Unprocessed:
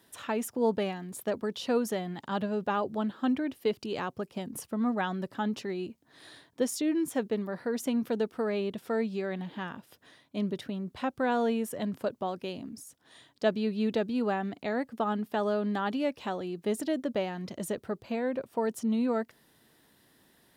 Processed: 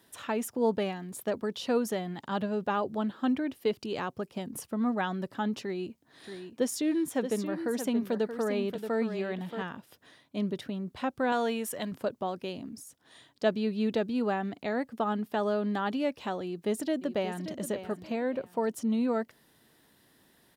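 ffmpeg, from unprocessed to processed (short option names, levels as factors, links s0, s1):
-filter_complex "[0:a]asettb=1/sr,asplit=3[s0][s1][s2];[s0]atrim=end=5.614[s3];[s1]atrim=start=5.61:end=9.62,asetpts=PTS-STARTPTS,afade=t=in:d=0.004:c=qsin,afade=t=out:st=4.006:d=0.004:c=qsin,aecho=1:1:628:0.376,atrim=end_sample=176841[s4];[s2]atrim=start=9.616[s5];[s3][s4]acrossfade=d=0.004:c1=hsin:c2=qsin[s6];[s6][s5]acrossfade=d=0.004:c1=qsin:c2=hsin,asettb=1/sr,asplit=3[s7][s8][s9];[s7]atrim=end=11.324[s10];[s8]atrim=start=11.32:end=11.92,asetpts=PTS-STARTPTS,afade=t=in:d=0.004:c=qsin,afade=t=out:st=0.596:d=0.004:c=qsin,tiltshelf=f=690:g=-5[s11];[s9]atrim=start=11.916[s12];[s10][s11]acrossfade=d=0.004:c1=hsin:c2=qsin[s13];[s13][s12]acrossfade=d=0.004:c1=qsin:c2=hsin,asplit=2[s14][s15];[s15]afade=t=in:st=16.43:d=0.01,afade=t=out:st=17.58:d=0.01,aecho=0:1:580|1160|1740:0.281838|0.0704596|0.0176149[s16];[s14][s16]amix=inputs=2:normalize=0"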